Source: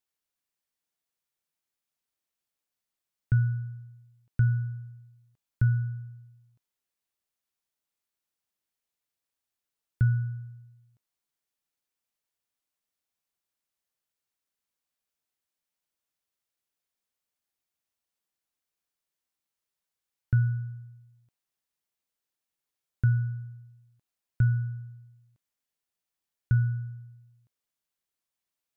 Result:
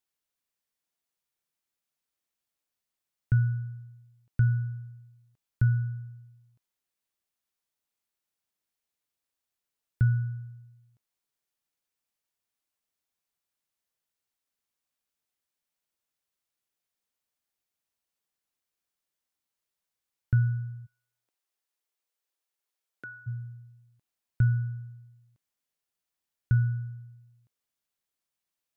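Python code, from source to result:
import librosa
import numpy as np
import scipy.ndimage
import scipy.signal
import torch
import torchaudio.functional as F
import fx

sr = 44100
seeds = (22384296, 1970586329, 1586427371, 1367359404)

y = fx.highpass(x, sr, hz=330.0, slope=24, at=(20.85, 23.26), fade=0.02)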